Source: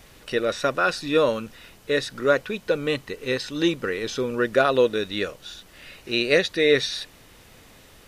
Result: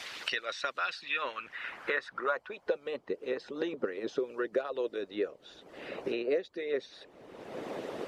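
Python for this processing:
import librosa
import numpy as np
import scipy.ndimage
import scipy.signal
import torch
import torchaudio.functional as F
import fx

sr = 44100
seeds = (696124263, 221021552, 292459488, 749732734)

y = fx.filter_sweep_bandpass(x, sr, from_hz=4700.0, to_hz=460.0, start_s=0.6, end_s=3.12, q=1.6)
y = fx.hpss(y, sr, part='harmonic', gain_db=-18)
y = fx.band_squash(y, sr, depth_pct=100)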